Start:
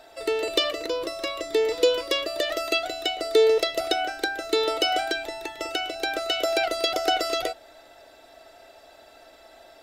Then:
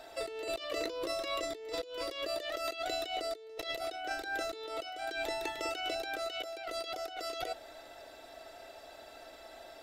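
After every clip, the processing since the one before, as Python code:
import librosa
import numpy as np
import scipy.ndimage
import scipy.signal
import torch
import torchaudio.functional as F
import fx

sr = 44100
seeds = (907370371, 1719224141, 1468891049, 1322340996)

y = fx.over_compress(x, sr, threshold_db=-33.0, ratio=-1.0)
y = F.gain(torch.from_numpy(y), -6.5).numpy()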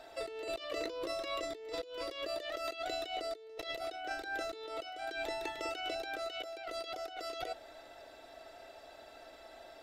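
y = fx.high_shelf(x, sr, hz=6900.0, db=-6.5)
y = F.gain(torch.from_numpy(y), -2.0).numpy()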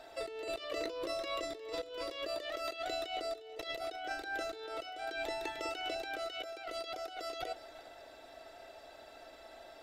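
y = x + 10.0 ** (-17.0 / 20.0) * np.pad(x, (int(356 * sr / 1000.0), 0))[:len(x)]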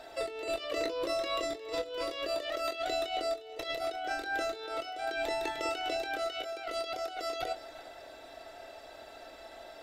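y = fx.doubler(x, sr, ms=24.0, db=-10.0)
y = F.gain(torch.from_numpy(y), 4.0).numpy()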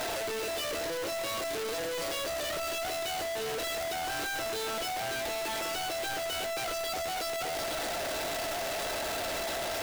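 y = np.sign(x) * np.sqrt(np.mean(np.square(x)))
y = F.gain(torch.from_numpy(y), 2.5).numpy()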